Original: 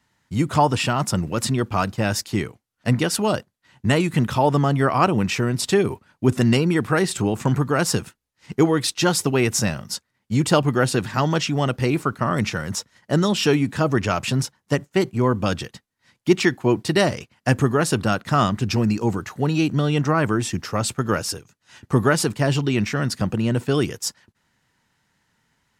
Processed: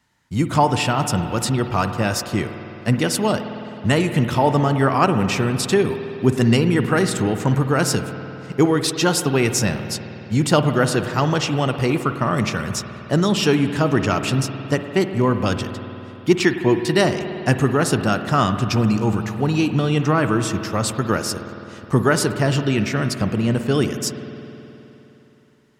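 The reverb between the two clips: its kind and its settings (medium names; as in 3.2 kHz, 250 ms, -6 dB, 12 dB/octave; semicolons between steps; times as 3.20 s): spring tank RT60 3.3 s, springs 52 ms, chirp 55 ms, DRR 8 dB; trim +1 dB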